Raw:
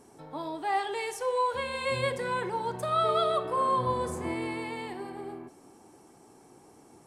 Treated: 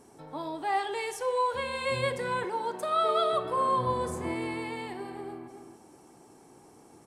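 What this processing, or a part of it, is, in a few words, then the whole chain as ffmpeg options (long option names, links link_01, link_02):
ducked delay: -filter_complex "[0:a]asettb=1/sr,asplit=3[link_01][link_02][link_03];[link_01]atrim=end=2.444[link_04];[link_02]atrim=start=2.44:end=3.33,asetpts=PTS-STARTPTS,afade=type=in:duration=0.004:curve=qsin,afade=type=out:start_time=0.886:duration=0.004:curve=qsin,highpass=frequency=220:width=0.5412,highpass=frequency=220:width=1.3066[link_05];[link_03]atrim=start=3.326[link_06];[link_04][link_05]acrossfade=duration=0.004:curve1=hsin:curve2=qsin[link_07];[link_07][link_06]acrossfade=duration=0.004:curve1=qsin:curve2=hsin,asplit=3[link_08][link_09][link_10];[link_09]adelay=276,volume=-8.5dB[link_11];[link_10]apad=whole_len=323909[link_12];[link_11][link_12]sidechaincompress=threshold=-46dB:ratio=8:attack=16:release=122[link_13];[link_08][link_13]amix=inputs=2:normalize=0"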